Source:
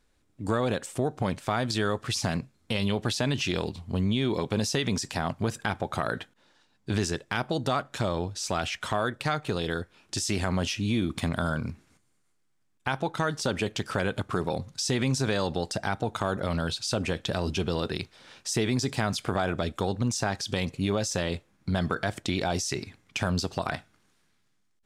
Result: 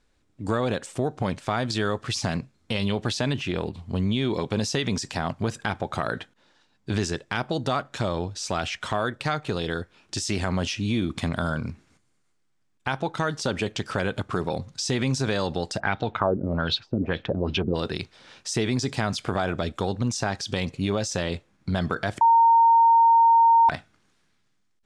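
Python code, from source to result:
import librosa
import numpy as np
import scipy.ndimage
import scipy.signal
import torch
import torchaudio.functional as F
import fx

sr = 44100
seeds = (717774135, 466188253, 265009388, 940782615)

y = fx.peak_eq(x, sr, hz=5500.0, db=-11.0, octaves=1.4, at=(3.33, 3.79))
y = fx.filter_lfo_lowpass(y, sr, shape='sine', hz=fx.line((15.79, 0.95), (17.74, 3.7)), low_hz=270.0, high_hz=4000.0, q=2.4, at=(15.79, 17.74), fade=0.02)
y = fx.edit(y, sr, fx.bleep(start_s=22.21, length_s=1.48, hz=920.0, db=-14.5), tone=tone)
y = scipy.signal.sosfilt(scipy.signal.butter(2, 8300.0, 'lowpass', fs=sr, output='sos'), y)
y = F.gain(torch.from_numpy(y), 1.5).numpy()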